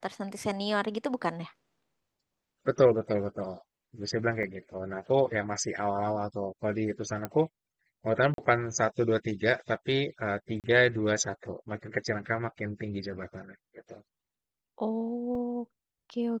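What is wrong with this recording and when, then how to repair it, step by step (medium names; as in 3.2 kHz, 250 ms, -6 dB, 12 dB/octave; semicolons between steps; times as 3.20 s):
4.43 s: dropout 2.6 ms
7.25 s: pop -18 dBFS
8.34–8.38 s: dropout 42 ms
10.60–10.64 s: dropout 38 ms
15.35 s: dropout 2.7 ms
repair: de-click; interpolate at 4.43 s, 2.6 ms; interpolate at 8.34 s, 42 ms; interpolate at 10.60 s, 38 ms; interpolate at 15.35 s, 2.7 ms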